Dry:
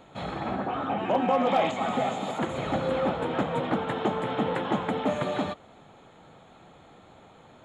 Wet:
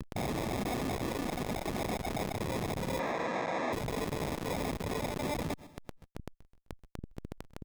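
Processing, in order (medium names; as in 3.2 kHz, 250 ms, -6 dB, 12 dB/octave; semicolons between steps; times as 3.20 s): reverb removal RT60 0.57 s; in parallel at +2 dB: compression 10:1, threshold -33 dBFS, peak gain reduction 13.5 dB; on the sum: Chebyshev shaper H 3 -7 dB, 4 -33 dB, 6 -19 dB, 7 -20 dB, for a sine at -11.5 dBFS; sample-and-hold 30×; Schmitt trigger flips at -39 dBFS; 2.99–3.73 s: cabinet simulation 290–5700 Hz, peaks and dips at 400 Hz -4 dB, 670 Hz +3 dB, 1.1 kHz +3 dB, 1.6 kHz +8 dB, 3.1 kHz -9 dB, 4.9 kHz -9 dB; on a send: feedback delay 129 ms, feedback 45%, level -19 dB; on the sum: transformer saturation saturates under 230 Hz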